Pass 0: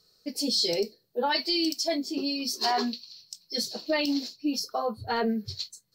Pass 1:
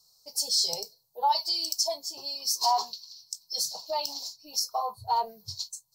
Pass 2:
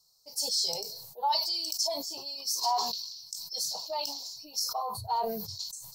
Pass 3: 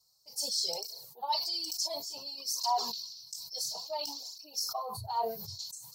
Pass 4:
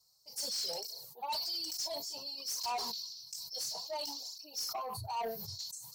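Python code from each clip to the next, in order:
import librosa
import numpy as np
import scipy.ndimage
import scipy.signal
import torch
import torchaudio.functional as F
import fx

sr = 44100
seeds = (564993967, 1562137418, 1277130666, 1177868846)

y1 = fx.curve_eq(x, sr, hz=(160.0, 240.0, 950.0, 1700.0, 6000.0), db=(0, -27, 14, -19, 13))
y1 = y1 * 10.0 ** (-6.0 / 20.0)
y2 = fx.sustainer(y1, sr, db_per_s=44.0)
y2 = y2 * 10.0 ** (-4.0 / 20.0)
y3 = fx.flanger_cancel(y2, sr, hz=0.57, depth_ms=5.2)
y4 = 10.0 ** (-32.5 / 20.0) * np.tanh(y3 / 10.0 ** (-32.5 / 20.0))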